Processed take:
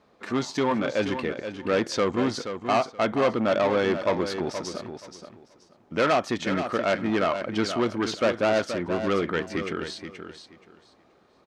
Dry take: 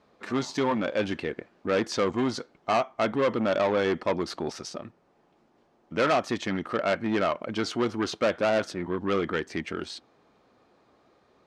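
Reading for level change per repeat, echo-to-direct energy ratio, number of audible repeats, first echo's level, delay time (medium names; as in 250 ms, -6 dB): -13.5 dB, -9.0 dB, 2, -9.0 dB, 477 ms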